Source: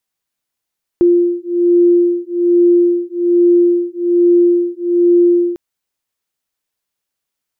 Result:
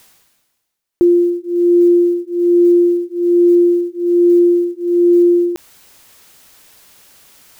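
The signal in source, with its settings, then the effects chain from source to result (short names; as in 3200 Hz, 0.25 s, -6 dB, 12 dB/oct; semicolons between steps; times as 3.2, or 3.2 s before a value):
beating tones 348 Hz, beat 1.2 Hz, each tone -12 dBFS 4.55 s
block floating point 7-bit; reverse; upward compressor, threshold -20 dBFS; reverse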